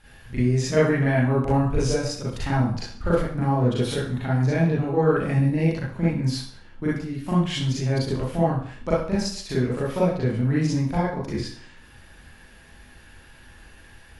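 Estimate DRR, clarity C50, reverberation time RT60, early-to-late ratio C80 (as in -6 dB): -9.0 dB, -0.5 dB, 0.50 s, 7.0 dB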